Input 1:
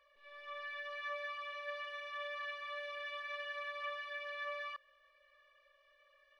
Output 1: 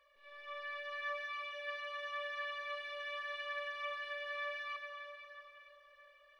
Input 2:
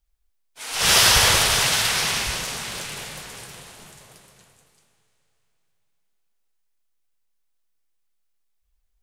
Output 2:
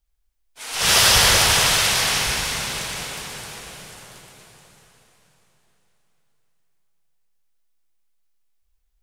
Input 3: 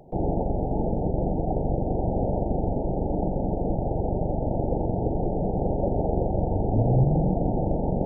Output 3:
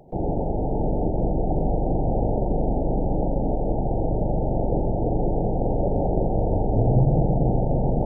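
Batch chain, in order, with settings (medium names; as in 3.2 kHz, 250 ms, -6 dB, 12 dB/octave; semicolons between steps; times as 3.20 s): plate-style reverb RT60 4 s, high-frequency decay 0.9×, pre-delay 80 ms, DRR 3 dB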